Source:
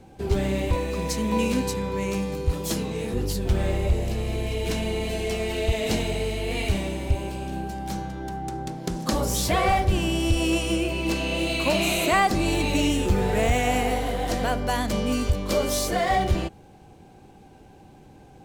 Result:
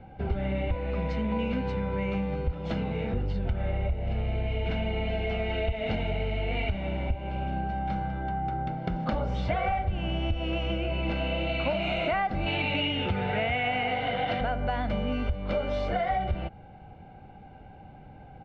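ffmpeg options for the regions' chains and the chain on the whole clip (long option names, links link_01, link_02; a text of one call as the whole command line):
ffmpeg -i in.wav -filter_complex "[0:a]asettb=1/sr,asplit=3[link_01][link_02][link_03];[link_01]atrim=end=12.464[link_04];[link_02]atrim=start=12.46:end=14.41,asetpts=PTS-STARTPTS,afade=type=in:duration=0.004:curve=qsin,afade=type=out:start_time=1.946:duration=0.004:curve=qsin,highpass=frequency=84:width=0.5412,highpass=frequency=84:width=1.3066,equalizer=frequency=3100:width_type=o:width=1.7:gain=9.5,acrossover=split=5800[link_05][link_06];[link_06]acompressor=threshold=-43dB:ratio=4:attack=1:release=60[link_07];[link_05][link_07]amix=inputs=2:normalize=0[link_08];[link_03]atrim=start=14.406[link_09];[link_04][link_08]acrossfade=duration=0.004:curve1=hsin:curve2=qsin[link_10];[link_10][link_09]acrossfade=duration=0.004:curve1=qsin:curve2=hsin,lowpass=frequency=2800:width=0.5412,lowpass=frequency=2800:width=1.3066,aecho=1:1:1.4:0.54,acompressor=threshold=-25dB:ratio=6" out.wav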